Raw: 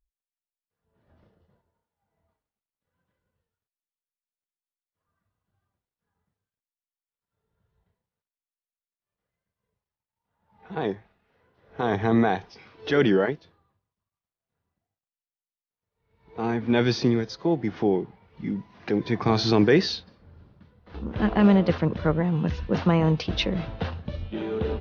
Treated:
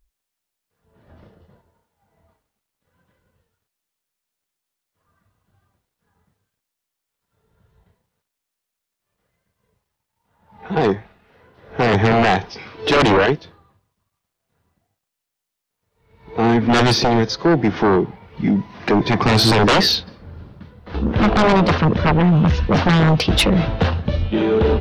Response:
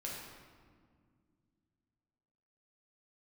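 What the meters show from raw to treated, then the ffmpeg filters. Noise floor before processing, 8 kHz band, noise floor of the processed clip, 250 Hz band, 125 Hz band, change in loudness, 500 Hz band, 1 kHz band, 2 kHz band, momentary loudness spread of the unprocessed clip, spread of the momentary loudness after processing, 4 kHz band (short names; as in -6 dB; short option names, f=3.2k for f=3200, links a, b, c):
under -85 dBFS, n/a, -82 dBFS, +6.0 dB, +9.0 dB, +8.0 dB, +7.0 dB, +12.0 dB, +11.0 dB, 14 LU, 10 LU, +12.0 dB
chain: -af "aeval=exprs='0.447*sin(PI/2*4.47*val(0)/0.447)':c=same,volume=-3dB"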